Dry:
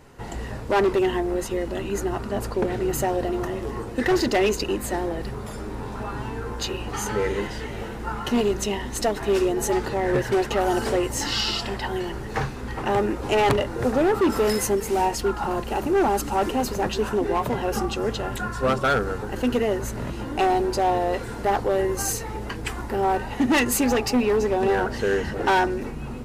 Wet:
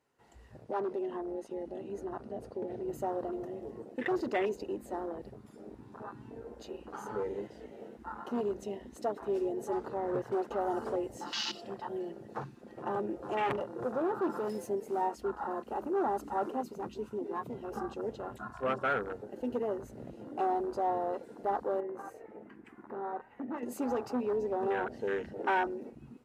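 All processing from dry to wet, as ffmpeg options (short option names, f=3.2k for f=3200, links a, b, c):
-filter_complex "[0:a]asettb=1/sr,asplit=3[a][b][c];[a]atrim=end=0.644[d];[b]atrim=start=0.64:end=2.88,asetpts=PTS-STARTPTS,afade=t=in:d=0.004:c=qsin,afade=t=out:st=2.236:d=0.004:c=qsin,lowpass=f=11k:w=0.5412,lowpass=f=11k:w=1.3066,acompressor=threshold=-23dB:ratio=2:attack=3.2:release=140:knee=1:detection=peak,bandreject=f=7.4k:w=8.1[e];[c]atrim=start=2.876[f];[d][e]acrossfade=d=0.004:c1=hsin:c2=qsin[g];[g][f]acrossfade=d=0.004:c1=qsin:c2=hsin,asettb=1/sr,asplit=3[h][i][j];[h]atrim=end=11.184[k];[i]atrim=start=11.18:end=14.69,asetpts=PTS-STARTPTS,afade=t=in:d=0.004:c=qsin,afade=t=out:st=3.506:d=0.004:c=qsin,bandreject=f=2.1k:w=25,aecho=1:1:5.7:0.42,atrim=end_sample=154791,aeval=exprs='clip(val(0),-1,0.0891)':c=same[l];[j]atrim=start=14.686[m];[k][l]acrossfade=d=0.004:c1=hsin:c2=qsin[n];[n][m]acrossfade=d=0.004:c1=qsin:c2=hsin,asettb=1/sr,asplit=3[o][p][q];[o]atrim=end=16.614[r];[p]atrim=start=16.61:end=17.72,asetpts=PTS-STARTPTS,afade=t=in:d=0.004:c=qsin,afade=t=out:st=1.106:d=0.004:c=qsin,equalizer=f=620:w=2.1:g=-11.5,bandreject=f=1.7k:w=5.8[s];[q]atrim=start=17.716[t];[r][s]acrossfade=d=0.004:c1=hsin:c2=qsin[u];[u][t]acrossfade=d=0.004:c1=qsin:c2=hsin,asettb=1/sr,asplit=3[v][w][x];[v]atrim=end=21.804[y];[w]atrim=start=21.8:end=23.63,asetpts=PTS-STARTPTS,afade=t=in:d=0.004:c=qsin,afade=t=out:st=1.826:d=0.004:c=qsin,highshelf=f=2.9k:t=q:w=1.5:g=-12.5,acompressor=threshold=-24dB:ratio=4:attack=3.2:release=140:knee=1:detection=peak,bandreject=f=58.83:t=h:w=4,bandreject=f=117.66:t=h:w=4,bandreject=f=176.49:t=h:w=4,bandreject=f=235.32:t=h:w=4,bandreject=f=294.15:t=h:w=4,bandreject=f=352.98:t=h:w=4,bandreject=f=411.81:t=h:w=4,bandreject=f=470.64:t=h:w=4,bandreject=f=529.47:t=h:w=4,bandreject=f=588.3:t=h:w=4,bandreject=f=647.13:t=h:w=4,bandreject=f=705.96:t=h:w=4,bandreject=f=764.79:t=h:w=4,bandreject=f=823.62:t=h:w=4,bandreject=f=882.45:t=h:w=4,bandreject=f=941.28:t=h:w=4,bandreject=f=1.00011k:t=h:w=4,bandreject=f=1.05894k:t=h:w=4,bandreject=f=1.11777k:t=h:w=4,bandreject=f=1.1766k:t=h:w=4,bandreject=f=1.23543k:t=h:w=4,bandreject=f=1.29426k:t=h:w=4,bandreject=f=1.35309k:t=h:w=4,bandreject=f=1.41192k:t=h:w=4,bandreject=f=1.47075k:t=h:w=4,bandreject=f=1.52958k:t=h:w=4,bandreject=f=1.58841k:t=h:w=4,bandreject=f=1.64724k:t=h:w=4,bandreject=f=1.70607k:t=h:w=4,bandreject=f=1.7649k:t=h:w=4,bandreject=f=1.82373k:t=h:w=4,bandreject=f=1.88256k:t=h:w=4,bandreject=f=1.94139k:t=h:w=4,bandreject=f=2.00022k:t=h:w=4[z];[x]atrim=start=23.626[aa];[y][z]acrossfade=d=0.004:c1=hsin:c2=qsin[ab];[ab][aa]acrossfade=d=0.004:c1=qsin:c2=hsin,highpass=f=310:p=1,afwtdn=0.0447,volume=-8.5dB"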